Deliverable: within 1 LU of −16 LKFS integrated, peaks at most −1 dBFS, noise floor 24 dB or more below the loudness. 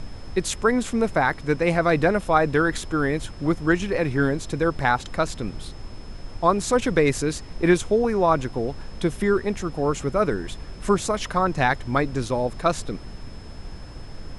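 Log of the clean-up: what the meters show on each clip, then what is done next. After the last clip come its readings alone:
interfering tone 5,200 Hz; level of the tone −52 dBFS; background noise floor −39 dBFS; target noise floor −47 dBFS; integrated loudness −23.0 LKFS; sample peak −5.0 dBFS; target loudness −16.0 LKFS
→ notch filter 5,200 Hz, Q 30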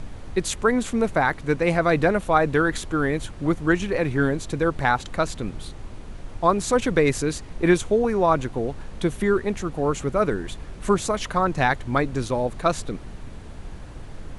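interfering tone none found; background noise floor −39 dBFS; target noise floor −47 dBFS
→ noise reduction from a noise print 8 dB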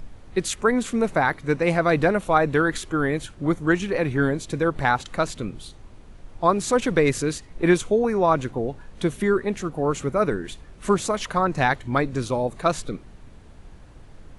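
background noise floor −46 dBFS; target noise floor −47 dBFS
→ noise reduction from a noise print 6 dB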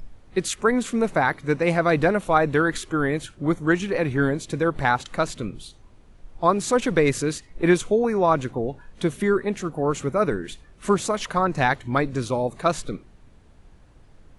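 background noise floor −52 dBFS; integrated loudness −23.0 LKFS; sample peak −5.0 dBFS; target loudness −16.0 LKFS
→ level +7 dB
brickwall limiter −1 dBFS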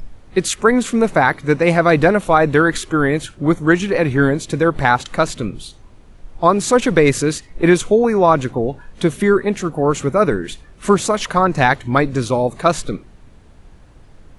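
integrated loudness −16.5 LKFS; sample peak −1.0 dBFS; background noise floor −45 dBFS

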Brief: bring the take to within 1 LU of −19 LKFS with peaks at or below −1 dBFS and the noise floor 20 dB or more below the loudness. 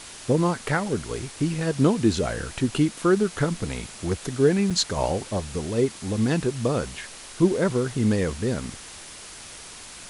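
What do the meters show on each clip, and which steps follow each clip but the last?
number of dropouts 1; longest dropout 6.0 ms; background noise floor −42 dBFS; target noise floor −45 dBFS; integrated loudness −24.5 LKFS; sample peak −7.0 dBFS; target loudness −19.0 LKFS
→ repair the gap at 0:04.70, 6 ms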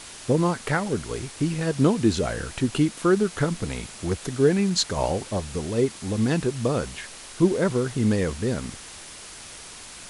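number of dropouts 0; background noise floor −42 dBFS; target noise floor −45 dBFS
→ noise reduction from a noise print 6 dB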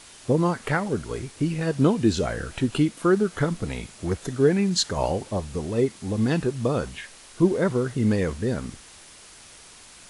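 background noise floor −48 dBFS; integrated loudness −24.5 LKFS; sample peak −7.0 dBFS; target loudness −19.0 LKFS
→ level +5.5 dB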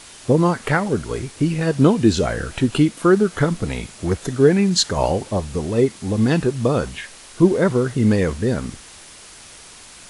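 integrated loudness −19.0 LKFS; sample peak −1.5 dBFS; background noise floor −42 dBFS

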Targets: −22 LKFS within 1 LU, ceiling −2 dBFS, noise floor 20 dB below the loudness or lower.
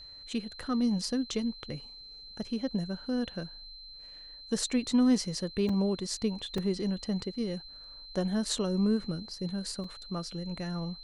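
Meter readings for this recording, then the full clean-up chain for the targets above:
number of dropouts 3; longest dropout 3.7 ms; interfering tone 4,100 Hz; level of the tone −46 dBFS; integrated loudness −32.0 LKFS; sample peak −16.0 dBFS; target loudness −22.0 LKFS
→ repair the gap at 0:05.69/0:06.58/0:09.84, 3.7 ms
notch filter 4,100 Hz, Q 30
level +10 dB

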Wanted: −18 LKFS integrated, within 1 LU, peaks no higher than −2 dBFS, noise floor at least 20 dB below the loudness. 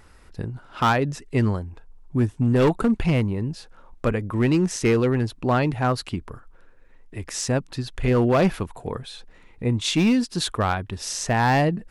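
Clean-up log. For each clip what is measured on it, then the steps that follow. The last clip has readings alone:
share of clipped samples 1.2%; peaks flattened at −13.5 dBFS; integrated loudness −23.0 LKFS; sample peak −13.5 dBFS; target loudness −18.0 LKFS
→ clipped peaks rebuilt −13.5 dBFS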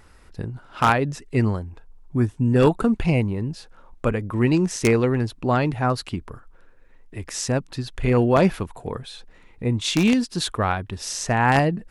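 share of clipped samples 0.0%; integrated loudness −22.0 LKFS; sample peak −4.5 dBFS; target loudness −18.0 LKFS
→ level +4 dB
brickwall limiter −2 dBFS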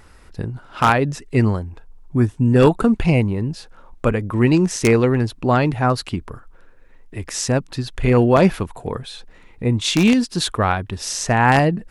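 integrated loudness −18.5 LKFS; sample peak −2.0 dBFS; background noise floor −47 dBFS

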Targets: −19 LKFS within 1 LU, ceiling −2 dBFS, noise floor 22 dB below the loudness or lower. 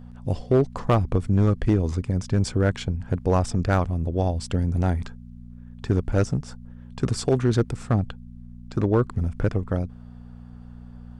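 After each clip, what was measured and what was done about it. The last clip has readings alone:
share of clipped samples 0.7%; peaks flattened at −12.0 dBFS; mains hum 60 Hz; hum harmonics up to 240 Hz; level of the hum −42 dBFS; integrated loudness −24.5 LKFS; sample peak −12.0 dBFS; target loudness −19.0 LKFS
→ clipped peaks rebuilt −12 dBFS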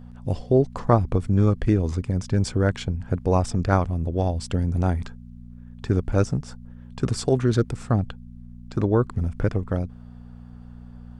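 share of clipped samples 0.0%; mains hum 60 Hz; hum harmonics up to 240 Hz; level of the hum −42 dBFS
→ hum removal 60 Hz, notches 4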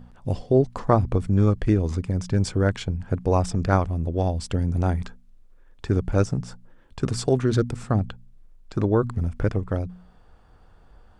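mains hum none found; integrated loudness −24.0 LKFS; sample peak −4.5 dBFS; target loudness −19.0 LKFS
→ level +5 dB
brickwall limiter −2 dBFS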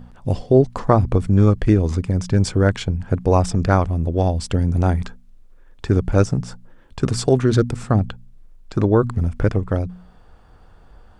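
integrated loudness −19.5 LKFS; sample peak −2.0 dBFS; background noise floor −48 dBFS

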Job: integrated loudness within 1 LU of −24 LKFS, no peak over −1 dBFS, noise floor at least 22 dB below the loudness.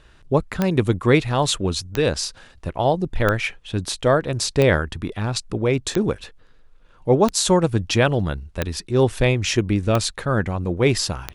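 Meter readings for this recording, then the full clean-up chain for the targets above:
number of clicks 9; integrated loudness −21.0 LKFS; sample peak −3.5 dBFS; target loudness −24.0 LKFS
→ click removal
level −3 dB

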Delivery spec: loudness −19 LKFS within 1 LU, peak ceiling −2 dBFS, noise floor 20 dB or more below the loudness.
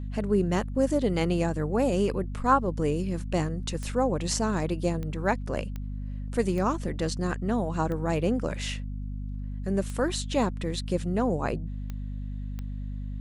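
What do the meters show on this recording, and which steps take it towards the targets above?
number of clicks 8; mains hum 50 Hz; hum harmonics up to 250 Hz; level of the hum −31 dBFS; integrated loudness −28.5 LKFS; sample peak −9.0 dBFS; target loudness −19.0 LKFS
→ click removal
hum removal 50 Hz, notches 5
level +9.5 dB
brickwall limiter −2 dBFS

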